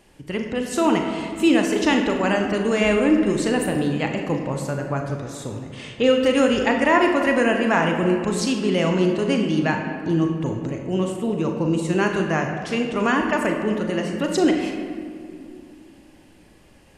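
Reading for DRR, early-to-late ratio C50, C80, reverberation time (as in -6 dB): 2.5 dB, 4.5 dB, 5.5 dB, 2.4 s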